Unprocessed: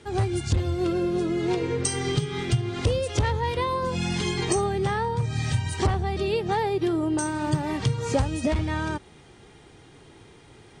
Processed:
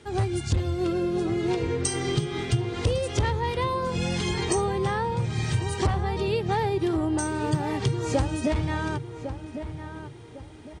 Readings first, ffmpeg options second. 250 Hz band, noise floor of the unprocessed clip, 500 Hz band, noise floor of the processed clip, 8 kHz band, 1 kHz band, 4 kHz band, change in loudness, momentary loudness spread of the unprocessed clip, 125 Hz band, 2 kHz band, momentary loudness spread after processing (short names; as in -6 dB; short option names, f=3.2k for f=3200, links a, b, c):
-0.5 dB, -51 dBFS, -0.5 dB, -43 dBFS, -1.0 dB, -0.5 dB, -1.0 dB, -1.0 dB, 2 LU, -0.5 dB, -1.0 dB, 11 LU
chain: -filter_complex "[0:a]asplit=2[a][b];[b]adelay=1104,lowpass=f=1.7k:p=1,volume=-9.5dB,asplit=2[c][d];[d]adelay=1104,lowpass=f=1.7k:p=1,volume=0.35,asplit=2[e][f];[f]adelay=1104,lowpass=f=1.7k:p=1,volume=0.35,asplit=2[g][h];[h]adelay=1104,lowpass=f=1.7k:p=1,volume=0.35[i];[a][c][e][g][i]amix=inputs=5:normalize=0,volume=-1dB"